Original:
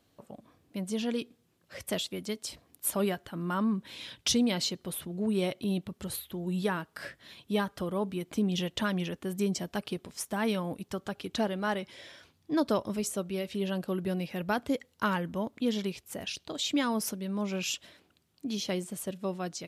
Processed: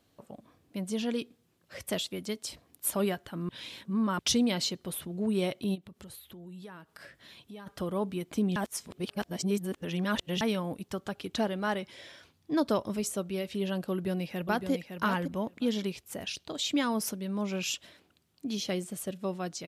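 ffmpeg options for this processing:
-filter_complex "[0:a]asplit=3[a][b][c];[a]afade=t=out:st=5.74:d=0.02[d];[b]acompressor=threshold=-48dB:ratio=3:attack=3.2:release=140:knee=1:detection=peak,afade=t=in:st=5.74:d=0.02,afade=t=out:st=7.66:d=0.02[e];[c]afade=t=in:st=7.66:d=0.02[f];[d][e][f]amix=inputs=3:normalize=0,asplit=2[g][h];[h]afade=t=in:st=13.91:d=0.01,afade=t=out:st=14.71:d=0.01,aecho=0:1:560|1120:0.446684|0.0446684[i];[g][i]amix=inputs=2:normalize=0,asettb=1/sr,asplit=3[j][k][l];[j]atrim=end=18.594[m];[k]atrim=start=18.59:end=19.18,asetpts=PTS-STARTPTS,afade=t=in:d=0.004:c=qsin,afade=t=out:st=0.586:d=0.004:c=qsin,bandreject=f=960:w=9[n];[l]atrim=start=19.176[o];[m][n]acrossfade=d=0.004:c1=hsin:c2=qsin[p];[p][o]acrossfade=d=0.004:c1=qsin:c2=hsin,asplit=5[q][r][s][t][u];[q]atrim=end=3.492[v];[r]atrim=start=3.488:end=4.192,asetpts=PTS-STARTPTS,areverse[w];[s]atrim=start=4.188:end=8.562[x];[t]atrim=start=8.558:end=10.412,asetpts=PTS-STARTPTS,areverse[y];[u]atrim=start=10.408[z];[v][w]acrossfade=d=0.004:c1=hsin:c2=hsin[aa];[aa][x]acrossfade=d=0.004:c1=hsin:c2=hsin[ab];[ab][y]acrossfade=d=0.004:c1=hsin:c2=hsin[ac];[ac][z]acrossfade=d=0.004:c1=hsin:c2=hsin"

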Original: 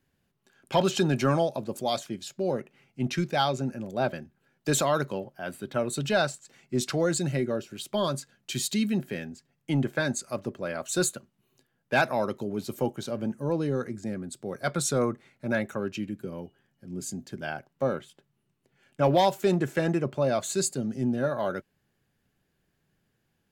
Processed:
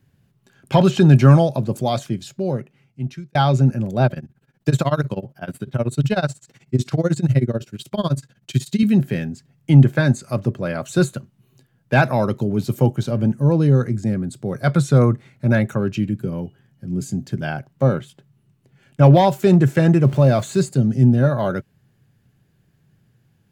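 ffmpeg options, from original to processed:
-filter_complex "[0:a]asettb=1/sr,asplit=3[a][b][c];[a]atrim=end=4.064[d];[b]atrim=start=4.06:end=8.83,asetpts=PTS-STARTPTS,afade=t=in:d=0.004:c=qsin,afade=t=out:st=4.766:d=0.004:c=qsin,tremolo=f=16:d=0.93[e];[c]atrim=start=8.826[f];[d][e]acrossfade=d=0.004:c1=hsin:c2=qsin[g];[g][f]acrossfade=d=0.004:c1=qsin:c2=hsin,asettb=1/sr,asplit=3[h][i][j];[h]atrim=end=20.024[k];[i]atrim=start=20.02:end=20.69,asetpts=PTS-STARTPTS,afade=t=in:d=0.004:c=qsin,afade=t=out:st=0.666:d=0.004:c=qsin,aeval=exprs='val(0)+0.5*0.00708*sgn(val(0))':c=same[l];[j]atrim=start=20.686[m];[k][l]acrossfade=d=0.004:c1=hsin:c2=qsin[n];[n][m]acrossfade=d=0.004:c1=qsin:c2=hsin,asplit=2[o][p];[o]atrim=end=3.35,asetpts=PTS-STARTPTS,afade=t=out:st=2.01:d=1.34[q];[p]atrim=start=3.35,asetpts=PTS-STARTPTS,afade=t=in:d=0.004:c=hsin[r];[q][r]concat=n=2:v=0:a=1,acrossover=split=2900[s][t];[t]acompressor=threshold=-39dB:ratio=4:attack=1:release=60[u];[s][u]amix=inputs=2:normalize=0,equalizer=f=120:t=o:w=1.3:g=14.5,volume=6dB"

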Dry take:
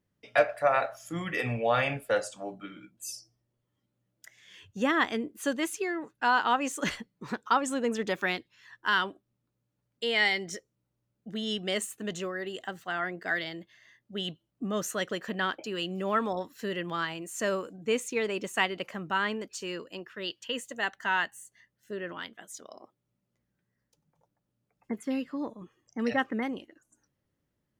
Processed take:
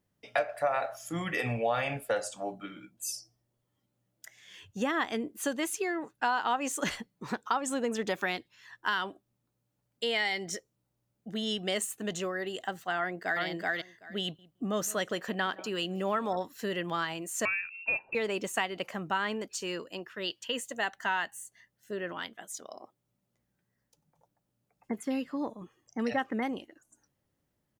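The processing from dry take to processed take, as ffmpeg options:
-filter_complex "[0:a]asplit=2[a][b];[b]afade=t=in:st=12.98:d=0.01,afade=t=out:st=13.43:d=0.01,aecho=0:1:380|760:0.944061|0.0944061[c];[a][c]amix=inputs=2:normalize=0,asettb=1/sr,asplit=3[d][e][f];[d]atrim=end=14.224[g];[e]atrim=start=14.22:end=16.38,asetpts=PTS-STARTPTS,afade=t=in:d=0.004:c=qsin,afade=t=out:st=2.156:d=0.004:c=qsin,asplit=2[h][i];[i]adelay=166,lowpass=f=1.4k:p=1,volume=-21dB,asplit=2[j][k];[k]adelay=166,lowpass=f=1.4k:p=1,volume=0.16[l];[h][j][l]amix=inputs=3:normalize=0,atrim=end_sample=95256[m];[f]atrim=start=16.376[n];[g][m]acrossfade=d=0.004:c1=hsin:c2=qsin[o];[o][n]acrossfade=d=0.004:c1=qsin:c2=hsin,asettb=1/sr,asplit=3[p][q][r];[p]atrim=end=17.454[s];[q]atrim=start=17.45:end=18.15,asetpts=PTS-STARTPTS,afade=t=in:d=0.004:c=qsin,afade=t=out:st=0.696:d=0.004:c=qsin,lowpass=f=2.5k:t=q:w=0.5098,lowpass=f=2.5k:t=q:w=0.6013,lowpass=f=2.5k:t=q:w=0.9,lowpass=f=2.5k:t=q:w=2.563,afreqshift=-2900[t];[r]atrim=start=18.146[u];[s][t]acrossfade=d=0.004:c1=hsin:c2=qsin[v];[v][u]acrossfade=d=0.004:c1=qsin:c2=hsin,highshelf=f=5.6k:g=5,acompressor=threshold=-27dB:ratio=6,equalizer=f=760:w=2.2:g=4.5"

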